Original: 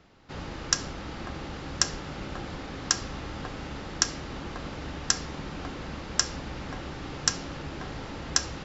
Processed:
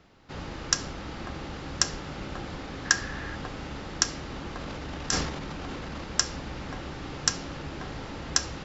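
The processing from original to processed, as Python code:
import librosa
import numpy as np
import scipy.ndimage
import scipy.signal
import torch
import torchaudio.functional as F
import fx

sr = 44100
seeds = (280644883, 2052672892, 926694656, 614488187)

y = fx.peak_eq(x, sr, hz=1700.0, db=14.5, octaves=0.24, at=(2.85, 3.36))
y = fx.transient(y, sr, attack_db=-6, sustain_db=9, at=(4.61, 6.04))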